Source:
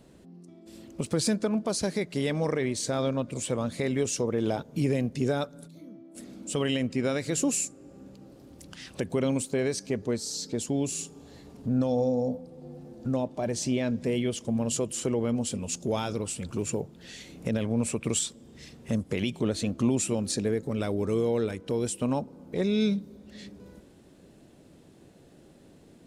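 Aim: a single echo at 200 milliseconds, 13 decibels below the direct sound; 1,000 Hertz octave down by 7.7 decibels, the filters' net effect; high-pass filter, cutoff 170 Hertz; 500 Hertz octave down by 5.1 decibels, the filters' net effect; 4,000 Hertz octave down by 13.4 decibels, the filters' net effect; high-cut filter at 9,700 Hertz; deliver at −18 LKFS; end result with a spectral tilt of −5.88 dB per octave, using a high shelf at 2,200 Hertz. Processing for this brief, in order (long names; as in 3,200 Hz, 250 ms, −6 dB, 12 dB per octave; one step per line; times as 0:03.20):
high-pass filter 170 Hz
low-pass filter 9,700 Hz
parametric band 500 Hz −4 dB
parametric band 1,000 Hz −7 dB
high-shelf EQ 2,200 Hz −8.5 dB
parametric band 4,000 Hz −9 dB
single-tap delay 200 ms −13 dB
level +15.5 dB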